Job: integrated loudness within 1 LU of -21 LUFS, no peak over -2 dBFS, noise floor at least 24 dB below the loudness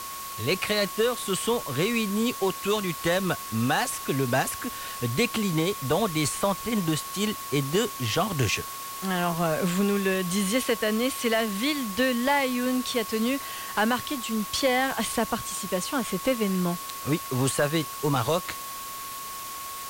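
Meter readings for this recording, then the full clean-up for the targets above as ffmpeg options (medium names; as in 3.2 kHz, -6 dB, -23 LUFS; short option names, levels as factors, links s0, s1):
steady tone 1.1 kHz; tone level -37 dBFS; noise floor -37 dBFS; noise floor target -51 dBFS; loudness -26.5 LUFS; peak level -12.5 dBFS; loudness target -21.0 LUFS
-> -af "bandreject=f=1100:w=30"
-af "afftdn=nr=14:nf=-37"
-af "volume=1.88"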